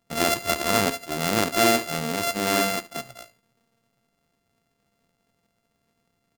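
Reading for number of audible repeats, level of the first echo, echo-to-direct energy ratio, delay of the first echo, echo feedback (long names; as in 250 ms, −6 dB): 2, −18.0 dB, −18.0 dB, 73 ms, 20%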